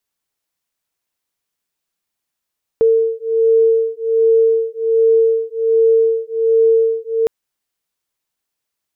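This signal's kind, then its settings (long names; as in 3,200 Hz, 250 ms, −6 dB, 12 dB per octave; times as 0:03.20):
two tones that beat 451 Hz, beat 1.3 Hz, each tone −14 dBFS 4.46 s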